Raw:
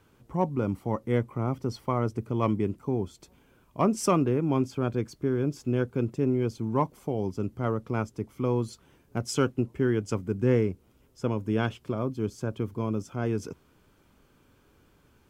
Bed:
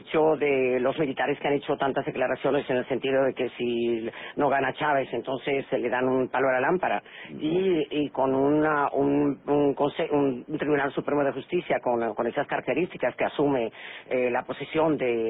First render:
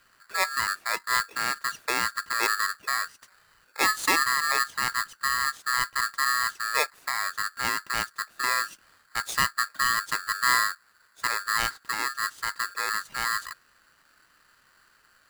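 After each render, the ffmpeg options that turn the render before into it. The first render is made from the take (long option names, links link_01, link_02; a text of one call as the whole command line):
ffmpeg -i in.wav -af "aeval=exprs='val(0)*sgn(sin(2*PI*1500*n/s))':channel_layout=same" out.wav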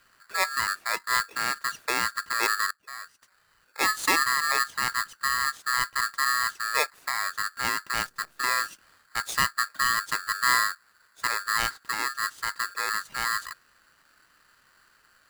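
ffmpeg -i in.wav -filter_complex "[0:a]asettb=1/sr,asplit=3[link_01][link_02][link_03];[link_01]atrim=end=7.974[link_04];[link_02]atrim=start=7.97:end=8.67,asetpts=PTS-STARTPTS,afade=type=in:duration=0.004:curve=qsin,afade=type=out:start_time=0.696:duration=0.004:curve=qsin,acrusher=bits=8:dc=4:mix=0:aa=0.000001[link_05];[link_03]atrim=start=8.666[link_06];[link_04][link_05]acrossfade=duration=0.004:curve1=hsin:curve2=qsin[link_07];[link_07][link_06]acrossfade=duration=0.004:curve1=qsin:curve2=hsin,asplit=2[link_08][link_09];[link_08]atrim=end=2.71,asetpts=PTS-STARTPTS,afade=type=out:start_time=2.706:duration=0.004:curve=hsin:silence=0.0794328[link_10];[link_09]atrim=start=2.71,asetpts=PTS-STARTPTS,afade=type=in:duration=1.34:silence=0.0794328[link_11];[link_10][link_11]concat=n=2:v=0:a=1" out.wav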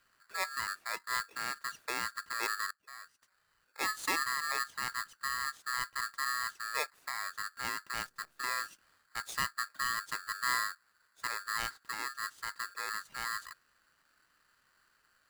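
ffmpeg -i in.wav -af "volume=-9.5dB" out.wav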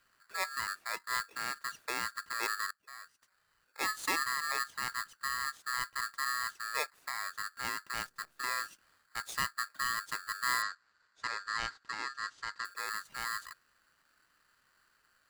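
ffmpeg -i in.wav -filter_complex "[0:a]asettb=1/sr,asplit=3[link_01][link_02][link_03];[link_01]atrim=end=10.624[link_04];[link_02]atrim=start=10.62:end=12.65,asetpts=PTS-STARTPTS,afade=type=in:duration=0.004:curve=qsin,afade=type=out:start_time=2.026:duration=0.004:curve=qsin,lowpass=frequency=6700:width=0.5412,lowpass=frequency=6700:width=1.3066[link_05];[link_03]atrim=start=12.646[link_06];[link_04][link_05]acrossfade=duration=0.004:curve1=hsin:curve2=qsin[link_07];[link_07][link_06]acrossfade=duration=0.004:curve1=qsin:curve2=hsin" out.wav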